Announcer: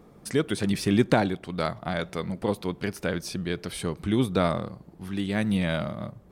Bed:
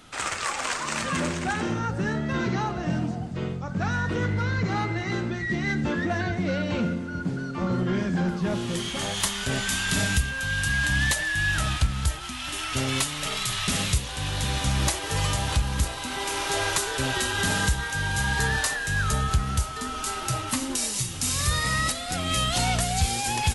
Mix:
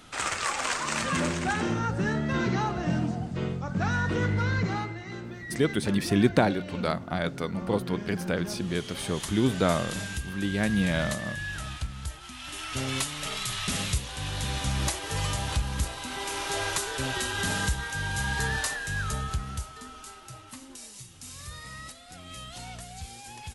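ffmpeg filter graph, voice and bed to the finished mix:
-filter_complex "[0:a]adelay=5250,volume=-0.5dB[a];[1:a]volume=6dB,afade=t=out:st=4.57:d=0.4:silence=0.316228,afade=t=in:st=12.09:d=0.82:silence=0.473151,afade=t=out:st=18.68:d=1.54:silence=0.223872[b];[a][b]amix=inputs=2:normalize=0"

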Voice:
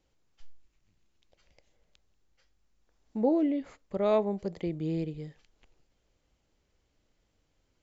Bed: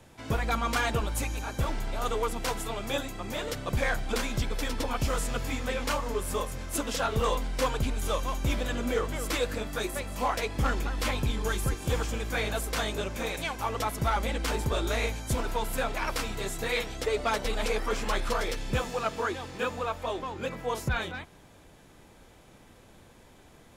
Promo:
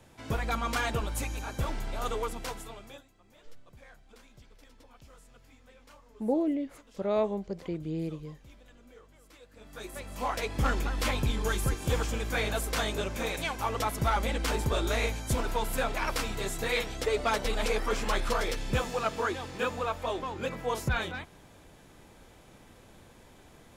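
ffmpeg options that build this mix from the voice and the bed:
-filter_complex "[0:a]adelay=3050,volume=-2dB[a];[1:a]volume=23.5dB,afade=t=out:st=2.1:d=0.95:silence=0.0668344,afade=t=in:st=9.52:d=1.16:silence=0.0501187[b];[a][b]amix=inputs=2:normalize=0"

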